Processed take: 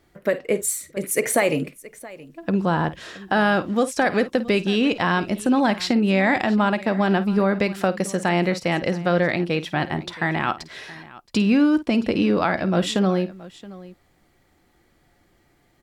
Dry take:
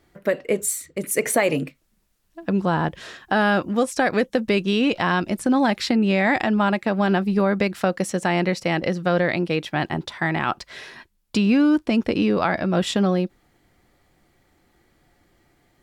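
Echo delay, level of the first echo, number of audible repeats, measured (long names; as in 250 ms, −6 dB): 52 ms, −15.0 dB, 2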